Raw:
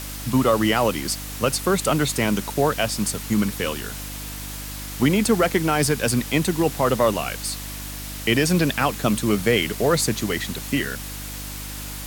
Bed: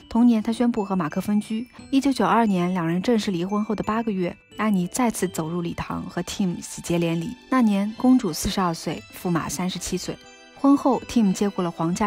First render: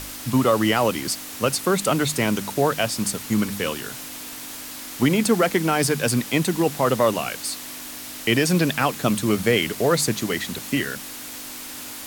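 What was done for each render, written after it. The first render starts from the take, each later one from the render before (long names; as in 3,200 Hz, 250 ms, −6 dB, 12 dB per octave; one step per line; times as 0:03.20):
hum removal 50 Hz, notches 4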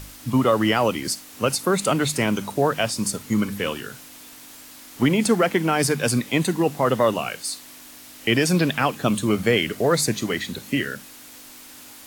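noise reduction from a noise print 8 dB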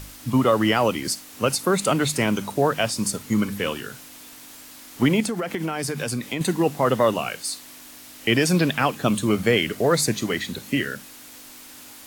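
0:05.20–0:06.41: downward compressor 10 to 1, threshold −22 dBFS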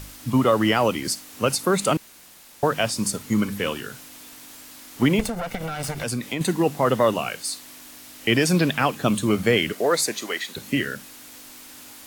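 0:01.97–0:02.63: fill with room tone
0:05.19–0:06.04: lower of the sound and its delayed copy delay 1.4 ms
0:09.73–0:10.55: high-pass filter 280 Hz → 620 Hz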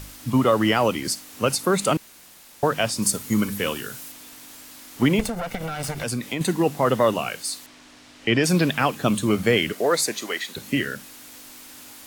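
0:03.02–0:04.12: high-shelf EQ 7,100 Hz +8 dB
0:07.66–0:08.44: high-frequency loss of the air 98 metres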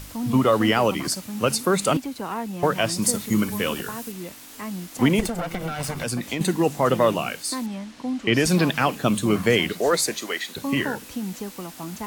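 mix in bed −11 dB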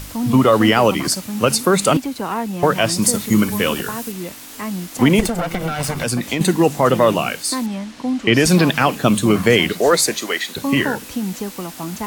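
level +6.5 dB
brickwall limiter −3 dBFS, peak gain reduction 2.5 dB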